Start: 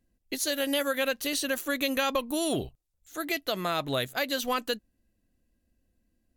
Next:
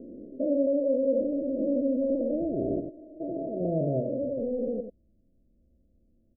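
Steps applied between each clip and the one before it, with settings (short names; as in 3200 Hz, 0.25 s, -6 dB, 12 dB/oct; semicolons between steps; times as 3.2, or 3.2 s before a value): stepped spectrum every 0.4 s; Chebyshev low-pass 660 Hz, order 8; echo 90 ms -7.5 dB; gain +8.5 dB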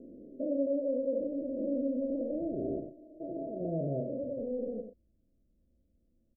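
doubler 36 ms -9 dB; gain -6.5 dB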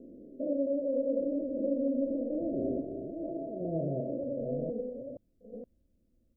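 reverse delay 0.47 s, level -5 dB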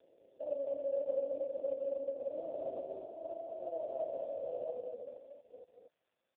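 HPF 610 Hz 24 dB/oct; echo 0.236 s -4 dB; gain +2.5 dB; AMR-NB 4.75 kbps 8000 Hz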